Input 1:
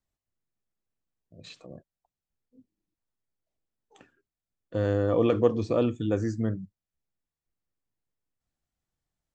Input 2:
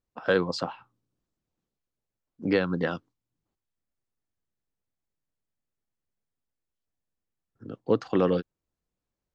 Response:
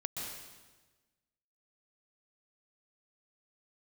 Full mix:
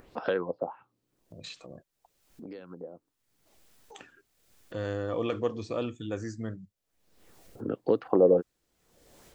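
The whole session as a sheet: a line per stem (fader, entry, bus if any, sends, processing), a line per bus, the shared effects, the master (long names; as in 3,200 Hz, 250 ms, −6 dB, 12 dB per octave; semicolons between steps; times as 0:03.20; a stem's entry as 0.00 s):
0:07.13 −13 dB → 0:07.45 −1.5 dB, 0.00 s, no send, tilt shelving filter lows −4.5 dB, about 890 Hz; automatic gain control gain up to 9 dB
+2.0 dB, 0.00 s, no send, parametric band 440 Hz +10 dB 2.1 octaves; downward compressor 2.5 to 1, threshold −30 dBFS, peak gain reduction 14 dB; auto-filter low-pass sine 1.3 Hz 560–5,100 Hz; automatic ducking −21 dB, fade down 1.60 s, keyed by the first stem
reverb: not used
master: upward compression, threshold −37 dBFS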